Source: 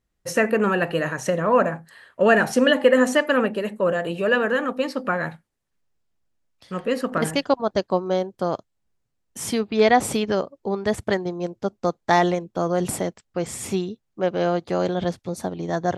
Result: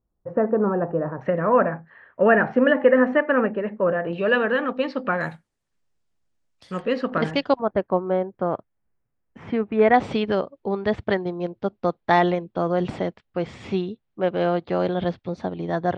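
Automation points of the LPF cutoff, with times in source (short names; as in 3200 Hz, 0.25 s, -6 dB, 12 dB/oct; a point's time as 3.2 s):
LPF 24 dB/oct
1100 Hz
from 1.21 s 2100 Hz
from 4.13 s 4000 Hz
from 5.21 s 10000 Hz
from 6.82 s 4400 Hz
from 7.59 s 2200 Hz
from 9.94 s 3800 Hz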